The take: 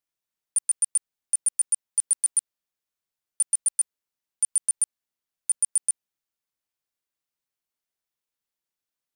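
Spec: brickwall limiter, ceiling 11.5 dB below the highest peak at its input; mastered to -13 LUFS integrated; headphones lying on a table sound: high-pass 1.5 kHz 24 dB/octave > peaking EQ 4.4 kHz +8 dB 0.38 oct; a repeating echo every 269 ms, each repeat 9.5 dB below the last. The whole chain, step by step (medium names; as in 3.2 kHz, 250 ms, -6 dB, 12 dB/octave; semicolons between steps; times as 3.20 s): peak limiter -27 dBFS; high-pass 1.5 kHz 24 dB/octave; peaking EQ 4.4 kHz +8 dB 0.38 oct; feedback delay 269 ms, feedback 33%, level -9.5 dB; trim +22.5 dB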